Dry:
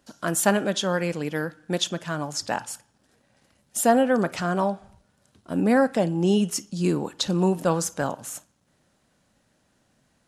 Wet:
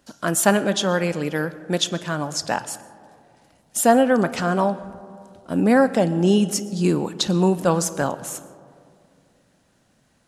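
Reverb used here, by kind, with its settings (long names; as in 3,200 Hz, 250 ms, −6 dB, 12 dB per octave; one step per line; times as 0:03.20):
comb and all-pass reverb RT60 2.4 s, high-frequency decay 0.3×, pre-delay 80 ms, DRR 16.5 dB
level +3.5 dB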